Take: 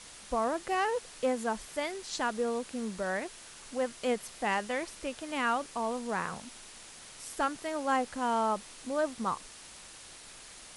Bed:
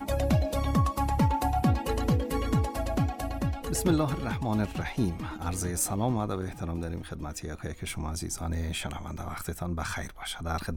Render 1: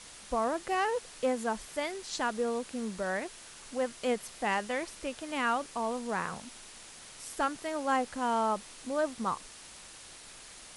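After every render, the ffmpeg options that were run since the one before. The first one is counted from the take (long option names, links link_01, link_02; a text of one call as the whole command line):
ffmpeg -i in.wav -af anull out.wav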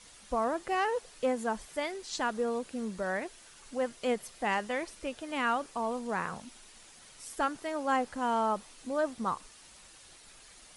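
ffmpeg -i in.wav -af "afftdn=noise_reduction=7:noise_floor=-50" out.wav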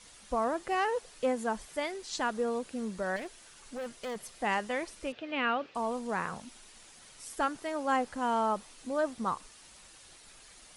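ffmpeg -i in.wav -filter_complex "[0:a]asettb=1/sr,asplit=3[link_01][link_02][link_03];[link_01]atrim=end=3.164[link_04];[link_02]atrim=start=3.16:end=4.4,asetpts=PTS-STARTPTS,afade=type=in:duration=0.004:curve=qsin,afade=type=out:start_time=1.236:duration=0.004:curve=qsin,asoftclip=type=hard:threshold=-35dB[link_05];[link_03]atrim=start=4.396[link_06];[link_04][link_05]acrossfade=duration=0.004:curve1=hsin:curve2=qsin[link_07];[link_07][link_06]acrossfade=duration=0.004:curve1=qsin:curve2=hsin,asettb=1/sr,asplit=3[link_08][link_09][link_10];[link_08]atrim=end=5.124[link_11];[link_09]atrim=start=5.12:end=5.75,asetpts=PTS-STARTPTS,afade=type=in:duration=0.004:curve=qsin,afade=type=out:start_time=0.626:duration=0.004:curve=qsin,highpass=100,equalizer=frequency=500:width_type=q:width=4:gain=3,equalizer=frequency=960:width_type=q:width=4:gain=-5,equalizer=frequency=2600:width_type=q:width=4:gain=6,lowpass=frequency=4100:width=0.5412,lowpass=frequency=4100:width=1.3066[link_12];[link_10]atrim=start=5.746[link_13];[link_11][link_12]acrossfade=duration=0.004:curve1=hsin:curve2=qsin[link_14];[link_14][link_13]acrossfade=duration=0.004:curve1=qsin:curve2=hsin" out.wav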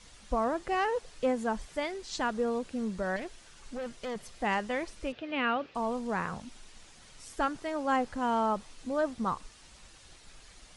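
ffmpeg -i in.wav -af "lowpass=7700,lowshelf=frequency=140:gain=10.5" out.wav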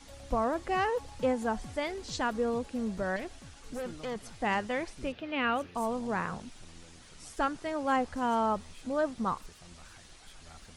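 ffmpeg -i in.wav -i bed.wav -filter_complex "[1:a]volume=-22dB[link_01];[0:a][link_01]amix=inputs=2:normalize=0" out.wav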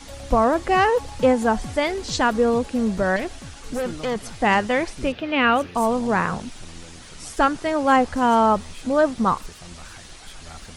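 ffmpeg -i in.wav -af "volume=11.5dB" out.wav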